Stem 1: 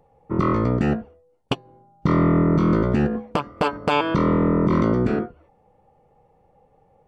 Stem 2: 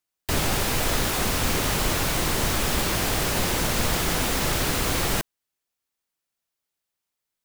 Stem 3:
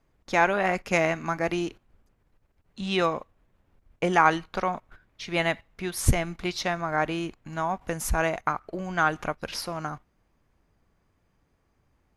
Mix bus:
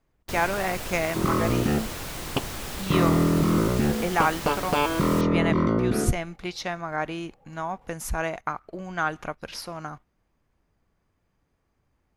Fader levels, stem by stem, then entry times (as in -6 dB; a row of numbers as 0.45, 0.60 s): -3.5, -10.5, -3.0 dB; 0.85, 0.00, 0.00 s